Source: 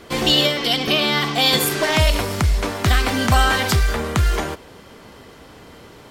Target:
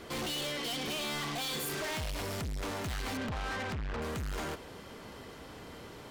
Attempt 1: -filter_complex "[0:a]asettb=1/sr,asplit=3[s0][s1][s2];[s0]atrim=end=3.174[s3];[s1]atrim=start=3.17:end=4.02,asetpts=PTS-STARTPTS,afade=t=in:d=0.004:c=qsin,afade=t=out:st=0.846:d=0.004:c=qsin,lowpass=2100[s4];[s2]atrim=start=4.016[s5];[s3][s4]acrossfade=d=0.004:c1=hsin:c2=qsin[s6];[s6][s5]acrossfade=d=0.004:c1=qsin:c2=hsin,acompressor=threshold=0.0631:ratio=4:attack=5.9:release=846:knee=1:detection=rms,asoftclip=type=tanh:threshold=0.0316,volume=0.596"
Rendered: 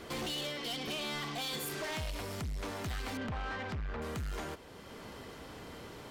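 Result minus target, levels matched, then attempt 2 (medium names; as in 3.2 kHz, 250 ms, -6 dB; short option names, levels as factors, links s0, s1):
compression: peak gain reduction +8 dB
-filter_complex "[0:a]asettb=1/sr,asplit=3[s0][s1][s2];[s0]atrim=end=3.174[s3];[s1]atrim=start=3.17:end=4.02,asetpts=PTS-STARTPTS,afade=t=in:d=0.004:c=qsin,afade=t=out:st=0.846:d=0.004:c=qsin,lowpass=2100[s4];[s2]atrim=start=4.016[s5];[s3][s4]acrossfade=d=0.004:c1=hsin:c2=qsin[s6];[s6][s5]acrossfade=d=0.004:c1=qsin:c2=hsin,acompressor=threshold=0.211:ratio=4:attack=5.9:release=846:knee=1:detection=rms,asoftclip=type=tanh:threshold=0.0316,volume=0.596"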